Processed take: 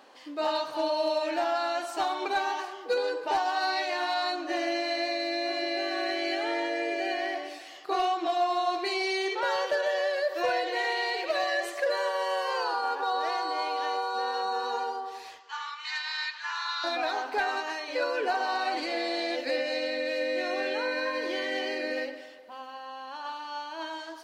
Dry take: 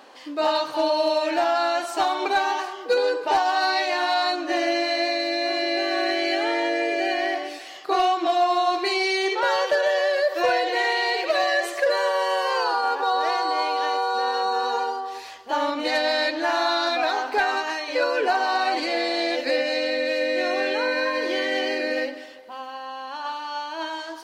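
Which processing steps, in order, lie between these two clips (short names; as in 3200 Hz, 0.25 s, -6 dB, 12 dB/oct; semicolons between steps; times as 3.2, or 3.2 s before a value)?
15.39–16.84 Chebyshev band-pass 970–7600 Hz, order 5; on a send: tape echo 0.121 s, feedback 59%, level -15 dB, low-pass 2100 Hz; on the sum: gain -6.5 dB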